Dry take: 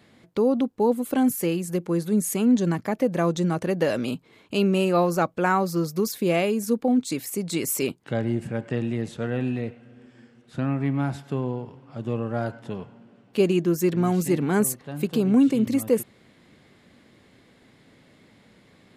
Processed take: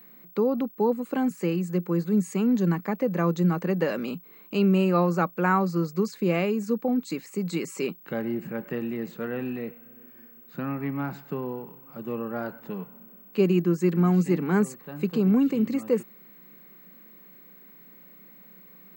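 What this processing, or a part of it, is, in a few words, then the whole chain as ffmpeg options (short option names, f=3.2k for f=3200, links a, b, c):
old television with a line whistle: -af "highpass=f=170:w=0.5412,highpass=f=170:w=1.3066,equalizer=f=180:t=q:w=4:g=7,equalizer=f=260:t=q:w=4:g=-4,equalizer=f=660:t=q:w=4:g=-6,equalizer=f=1.2k:t=q:w=4:g=3,equalizer=f=3.4k:t=q:w=4:g=-10,equalizer=f=5.6k:t=q:w=4:g=-10,lowpass=f=6.6k:w=0.5412,lowpass=f=6.6k:w=1.3066,aeval=exprs='val(0)+0.00447*sin(2*PI*15734*n/s)':c=same,volume=-1.5dB"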